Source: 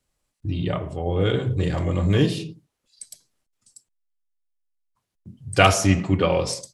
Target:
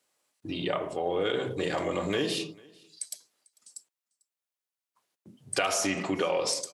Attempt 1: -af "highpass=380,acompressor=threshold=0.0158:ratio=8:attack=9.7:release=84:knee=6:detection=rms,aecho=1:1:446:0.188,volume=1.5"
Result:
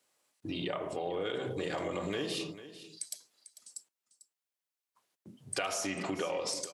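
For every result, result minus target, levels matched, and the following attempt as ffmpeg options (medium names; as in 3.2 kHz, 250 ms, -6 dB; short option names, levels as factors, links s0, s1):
echo-to-direct +11.5 dB; compression: peak gain reduction +7 dB
-af "highpass=380,acompressor=threshold=0.0158:ratio=8:attack=9.7:release=84:knee=6:detection=rms,aecho=1:1:446:0.0501,volume=1.5"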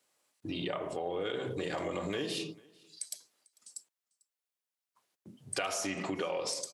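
compression: peak gain reduction +7 dB
-af "highpass=380,acompressor=threshold=0.0398:ratio=8:attack=9.7:release=84:knee=6:detection=rms,aecho=1:1:446:0.0501,volume=1.5"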